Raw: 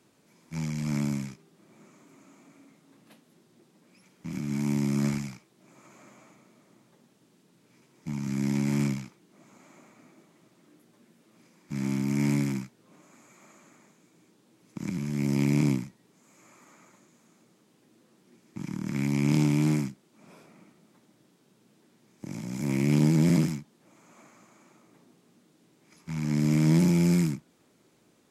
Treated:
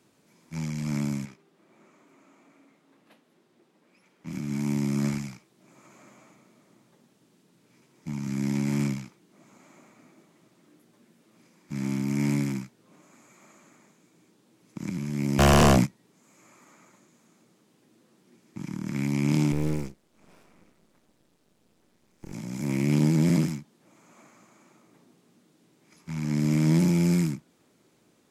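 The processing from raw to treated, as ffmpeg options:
-filter_complex "[0:a]asettb=1/sr,asplit=3[s0][s1][s2];[s0]atrim=end=1.254[s3];[s1]atrim=start=1.25:end=4.27,asetpts=PTS-STARTPTS,afade=t=in:d=0.004:c=qsin,afade=t=out:st=3.016:d=0.004:c=qsin,bass=f=250:g=-9,treble=f=4000:g=-8[s4];[s2]atrim=start=4.266[s5];[s3][s4]acrossfade=d=0.004:c1=hsin:c2=qsin[s6];[s6][s5]acrossfade=d=0.004:c1=qsin:c2=hsin,asplit=3[s7][s8][s9];[s7]afade=t=out:st=15.38:d=0.02[s10];[s8]aeval=exprs='0.211*sin(PI/2*3.98*val(0)/0.211)':c=same,afade=t=in:st=15.38:d=0.02,afade=t=out:st=15.85:d=0.02[s11];[s9]afade=t=in:st=15.85:d=0.02[s12];[s10][s11][s12]amix=inputs=3:normalize=0,asettb=1/sr,asplit=3[s13][s14][s15];[s13]atrim=end=19.524[s16];[s14]atrim=start=19.52:end=22.33,asetpts=PTS-STARTPTS,afade=t=in:d=0.004:c=qsin,afade=t=out:st=2.806:d=0.004:c=qsin,aeval=exprs='max(val(0),0)':c=same[s17];[s15]atrim=start=22.326[s18];[s16][s17]acrossfade=d=0.004:c1=hsin:c2=qsin[s19];[s19][s18]acrossfade=d=0.004:c1=qsin:c2=hsin"

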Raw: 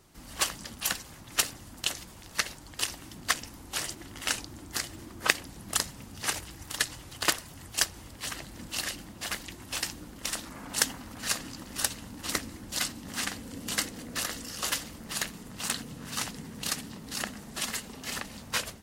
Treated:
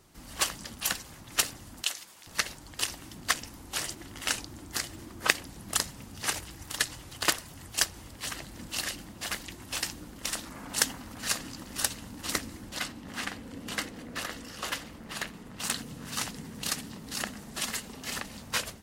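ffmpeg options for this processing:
-filter_complex "[0:a]asettb=1/sr,asplit=3[s0][s1][s2];[s0]atrim=end=1.834[s3];[s1]atrim=start=1.83:end=2.27,asetpts=PTS-STARTPTS,afade=t=in:d=0.004:c=qsin,afade=t=out:st=0.436:d=0.004:c=qsin,highpass=f=1100:p=1[s4];[s2]atrim=start=2.266[s5];[s3][s4]acrossfade=d=0.004:c1=hsin:c2=qsin[s6];[s6][s5]acrossfade=d=0.004:c1=qsin:c2=hsin,asettb=1/sr,asplit=3[s7][s8][s9];[s7]atrim=end=12.694[s10];[s8]atrim=start=12.69:end=15.6,asetpts=PTS-STARTPTS,afade=t=in:d=0.004:c=qsin,afade=t=out:st=2.906:d=0.004:c=qsin,bass=f=250:g=-2,treble=f=4000:g=-9[s11];[s9]atrim=start=15.596[s12];[s10][s11]acrossfade=d=0.004:c1=hsin:c2=qsin[s13];[s13][s12]acrossfade=d=0.004:c1=qsin:c2=hsin"

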